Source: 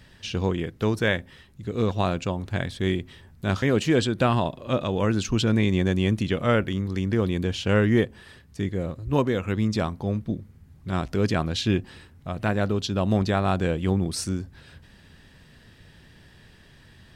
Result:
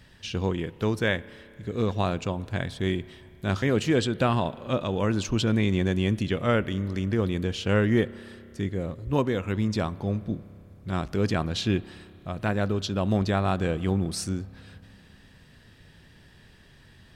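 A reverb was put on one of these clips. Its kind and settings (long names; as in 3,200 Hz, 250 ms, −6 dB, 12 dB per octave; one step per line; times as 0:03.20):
spring reverb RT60 3.1 s, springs 30 ms, chirp 45 ms, DRR 19 dB
level −2 dB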